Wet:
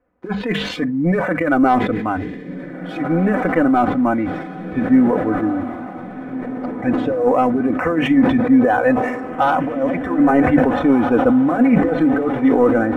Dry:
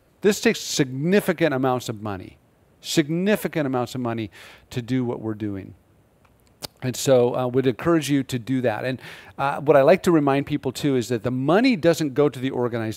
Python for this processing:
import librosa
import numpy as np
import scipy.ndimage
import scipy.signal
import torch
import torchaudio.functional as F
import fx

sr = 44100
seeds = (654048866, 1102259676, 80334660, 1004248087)

y = fx.self_delay(x, sr, depth_ms=0.11)
y = fx.low_shelf(y, sr, hz=330.0, db=-3.5)
y = fx.over_compress(y, sr, threshold_db=-22.0, ratio=-0.5)
y = scipy.signal.sosfilt(scipy.signal.butter(4, 1900.0, 'lowpass', fs=sr, output='sos'), y)
y = fx.hum_notches(y, sr, base_hz=50, count=4)
y = fx.leveller(y, sr, passes=1)
y = fx.noise_reduce_blind(y, sr, reduce_db=12)
y = y + 0.73 * np.pad(y, (int(4.0 * sr / 1000.0), 0))[:len(y)]
y = fx.echo_diffused(y, sr, ms=1648, feedback_pct=54, wet_db=-11)
y = fx.sustainer(y, sr, db_per_s=47.0)
y = F.gain(torch.from_numpy(y), 3.5).numpy()